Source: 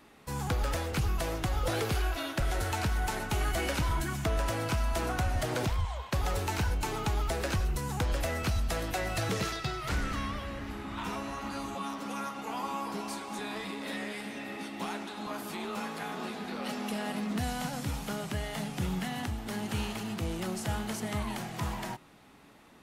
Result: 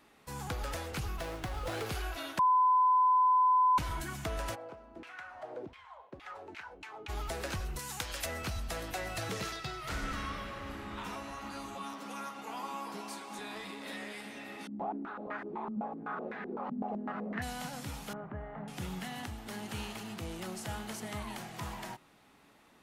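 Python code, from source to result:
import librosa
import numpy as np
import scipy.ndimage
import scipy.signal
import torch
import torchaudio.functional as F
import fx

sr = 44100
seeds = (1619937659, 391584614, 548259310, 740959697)

y = fx.running_max(x, sr, window=5, at=(1.16, 1.86))
y = fx.filter_lfo_bandpass(y, sr, shape='saw_down', hz=fx.line((4.54, 0.78), (7.08, 4.7)), low_hz=250.0, high_hz=2700.0, q=2.4, at=(4.54, 7.08), fade=0.02)
y = fx.tilt_shelf(y, sr, db=-7.5, hz=1200.0, at=(7.79, 8.26))
y = fx.reverb_throw(y, sr, start_s=9.83, length_s=1.02, rt60_s=2.4, drr_db=2.0)
y = fx.highpass(y, sr, hz=110.0, slope=12, at=(11.93, 13.35))
y = fx.filter_held_lowpass(y, sr, hz=7.9, low_hz=220.0, high_hz=1800.0, at=(14.67, 17.42))
y = fx.lowpass(y, sr, hz=1500.0, slope=24, at=(18.13, 18.68))
y = fx.edit(y, sr, fx.bleep(start_s=2.39, length_s=1.39, hz=1010.0, db=-17.5), tone=tone)
y = fx.low_shelf(y, sr, hz=360.0, db=-4.5)
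y = y * librosa.db_to_amplitude(-4.0)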